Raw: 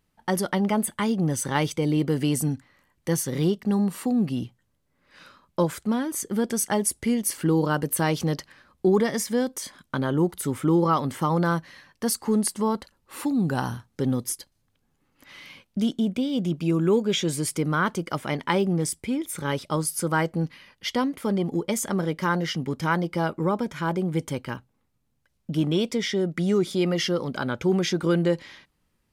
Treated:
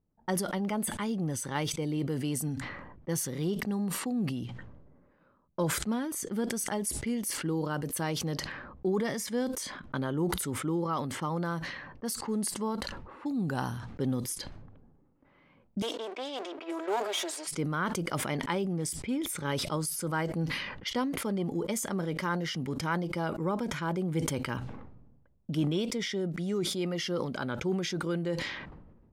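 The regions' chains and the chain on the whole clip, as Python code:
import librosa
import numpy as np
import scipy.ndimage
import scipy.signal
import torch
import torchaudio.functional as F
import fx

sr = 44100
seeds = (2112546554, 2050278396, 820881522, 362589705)

y = fx.chain(x, sr, fx.lower_of_two(delay_ms=3.1),
    fx.highpass(hz=410.0, slope=24), at=(15.82, 17.47))
y = fx.rider(y, sr, range_db=4, speed_s=0.5)
y = fx.env_lowpass(y, sr, base_hz=620.0, full_db=-24.5)
y = fx.sustainer(y, sr, db_per_s=42.0)
y = F.gain(torch.from_numpy(y), -7.5).numpy()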